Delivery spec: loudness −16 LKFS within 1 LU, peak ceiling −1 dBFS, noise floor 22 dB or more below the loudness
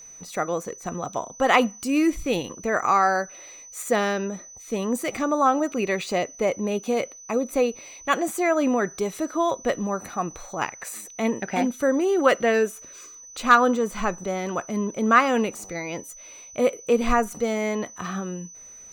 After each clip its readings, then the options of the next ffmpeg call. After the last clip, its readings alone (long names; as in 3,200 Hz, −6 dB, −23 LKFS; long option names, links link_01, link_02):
interfering tone 6,000 Hz; level of the tone −42 dBFS; integrated loudness −24.0 LKFS; sample peak −4.5 dBFS; target loudness −16.0 LKFS
→ -af "bandreject=frequency=6000:width=30"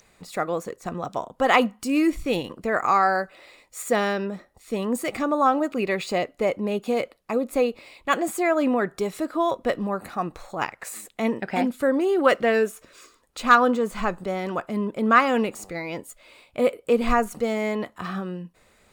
interfering tone none found; integrated loudness −24.0 LKFS; sample peak −4.5 dBFS; target loudness −16.0 LKFS
→ -af "volume=8dB,alimiter=limit=-1dB:level=0:latency=1"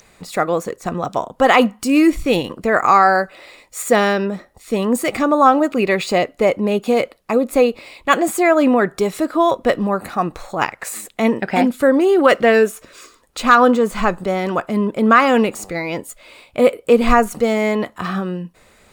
integrated loudness −16.5 LKFS; sample peak −1.0 dBFS; background noise floor −53 dBFS